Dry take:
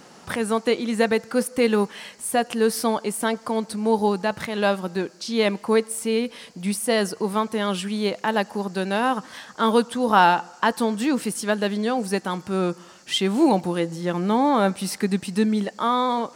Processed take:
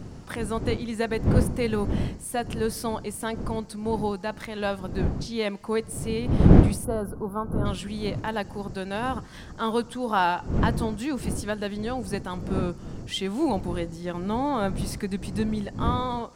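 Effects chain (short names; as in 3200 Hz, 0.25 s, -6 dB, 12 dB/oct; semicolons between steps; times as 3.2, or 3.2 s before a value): wind noise 200 Hz -21 dBFS; spectral gain 6.84–7.66, 1600–10000 Hz -22 dB; gain -7 dB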